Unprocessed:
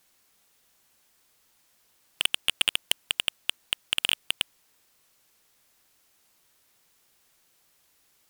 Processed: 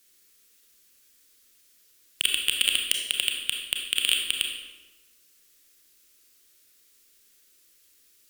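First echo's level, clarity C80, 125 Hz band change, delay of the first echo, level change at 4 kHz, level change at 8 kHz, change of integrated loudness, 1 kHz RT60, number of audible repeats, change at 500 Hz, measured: no echo audible, 6.0 dB, can't be measured, no echo audible, +2.5 dB, +5.5 dB, +2.5 dB, 1.1 s, no echo audible, −1.5 dB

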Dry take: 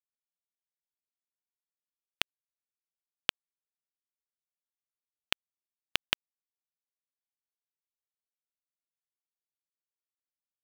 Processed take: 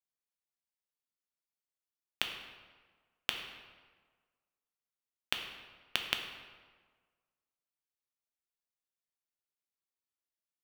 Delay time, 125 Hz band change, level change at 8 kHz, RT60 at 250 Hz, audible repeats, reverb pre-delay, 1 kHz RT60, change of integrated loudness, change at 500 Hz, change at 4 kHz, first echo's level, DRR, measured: no echo audible, −2.0 dB, −2.5 dB, 1.5 s, no echo audible, 5 ms, 1.5 s, −3.0 dB, −2.0 dB, −2.0 dB, no echo audible, 3.5 dB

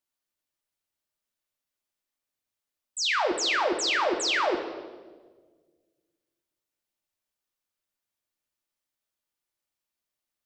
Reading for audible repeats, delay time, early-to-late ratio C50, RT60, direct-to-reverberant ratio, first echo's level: no echo audible, no echo audible, 7.5 dB, 1.5 s, 3.0 dB, no echo audible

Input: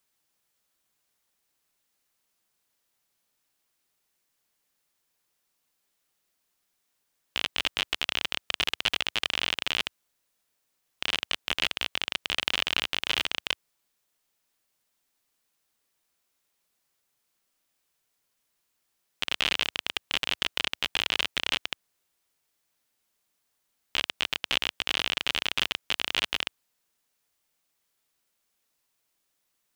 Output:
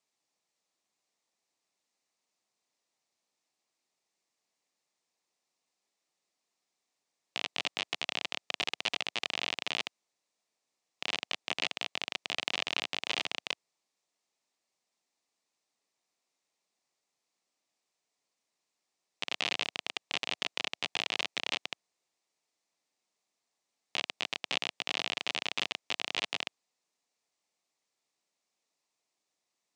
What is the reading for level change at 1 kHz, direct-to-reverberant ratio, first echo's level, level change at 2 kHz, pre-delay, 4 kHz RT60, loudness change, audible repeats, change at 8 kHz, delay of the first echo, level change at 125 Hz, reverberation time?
−3.5 dB, no reverb audible, no echo audible, −5.5 dB, no reverb audible, no reverb audible, −6.0 dB, no echo audible, −4.5 dB, no echo audible, −10.0 dB, no reverb audible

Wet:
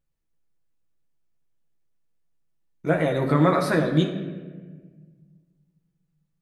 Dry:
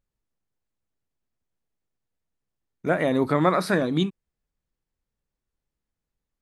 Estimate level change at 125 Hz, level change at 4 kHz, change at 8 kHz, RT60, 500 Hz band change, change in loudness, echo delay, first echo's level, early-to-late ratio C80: +5.0 dB, −0.5 dB, 0.0 dB, 1.5 s, +0.5 dB, +1.0 dB, no echo audible, no echo audible, 9.0 dB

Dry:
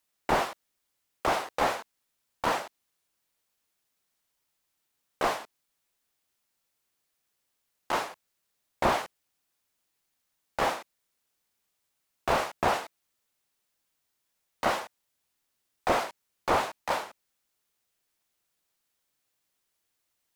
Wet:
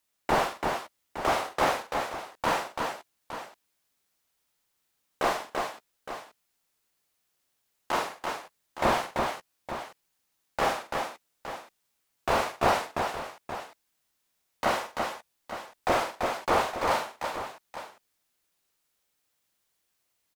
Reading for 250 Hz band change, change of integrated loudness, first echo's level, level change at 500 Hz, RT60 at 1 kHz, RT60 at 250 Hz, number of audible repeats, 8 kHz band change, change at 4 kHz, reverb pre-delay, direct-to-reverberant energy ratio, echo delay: +2.5 dB, 0.0 dB, −6.5 dB, +2.5 dB, no reverb audible, no reverb audible, 4, +2.5 dB, +2.5 dB, no reverb audible, no reverb audible, 45 ms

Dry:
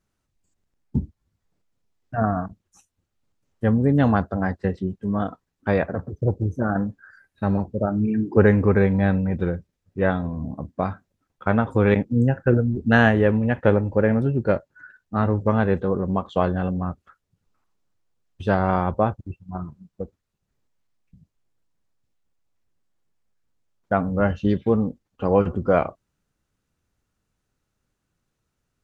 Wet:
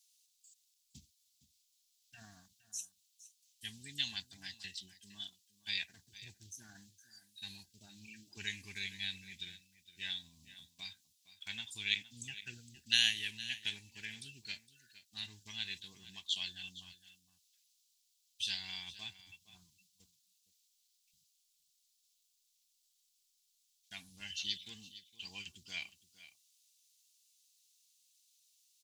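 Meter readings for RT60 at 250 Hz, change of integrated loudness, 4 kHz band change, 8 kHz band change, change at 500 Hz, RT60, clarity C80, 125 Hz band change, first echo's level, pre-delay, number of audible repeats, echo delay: no reverb audible, −17.5 dB, +9.0 dB, can't be measured, below −40 dB, no reverb audible, no reverb audible, −36.0 dB, −16.0 dB, no reverb audible, 1, 463 ms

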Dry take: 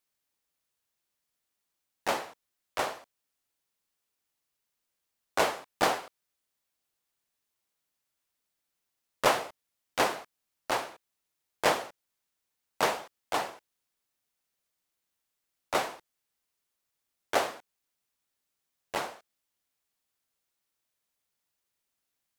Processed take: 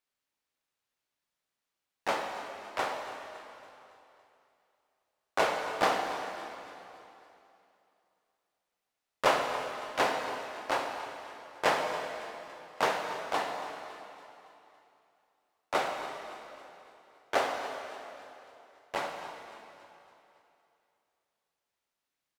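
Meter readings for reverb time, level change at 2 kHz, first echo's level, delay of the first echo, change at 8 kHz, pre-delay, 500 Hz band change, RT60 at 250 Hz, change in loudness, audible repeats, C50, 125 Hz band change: 2.9 s, +0.5 dB, −15.5 dB, 280 ms, −5.0 dB, 4 ms, +0.5 dB, 2.7 s, −2.0 dB, 4, 4.0 dB, −2.5 dB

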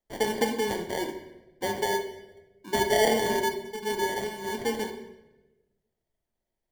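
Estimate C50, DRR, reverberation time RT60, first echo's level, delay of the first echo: 8.5 dB, 4.0 dB, 1.1 s, no echo audible, no echo audible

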